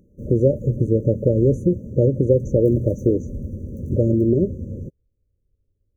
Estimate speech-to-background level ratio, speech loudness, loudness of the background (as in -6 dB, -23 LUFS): 12.5 dB, -20.0 LUFS, -32.5 LUFS